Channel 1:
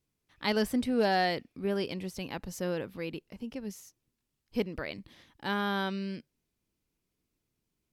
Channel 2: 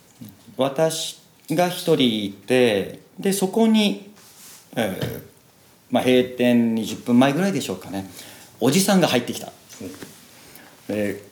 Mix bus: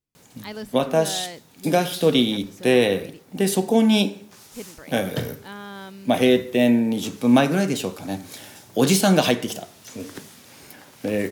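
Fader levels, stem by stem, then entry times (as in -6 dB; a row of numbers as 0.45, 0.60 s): -6.5, 0.0 dB; 0.00, 0.15 s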